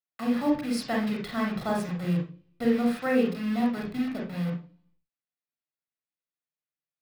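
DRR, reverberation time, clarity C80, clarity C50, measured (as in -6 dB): -1.0 dB, 0.40 s, 11.0 dB, 4.5 dB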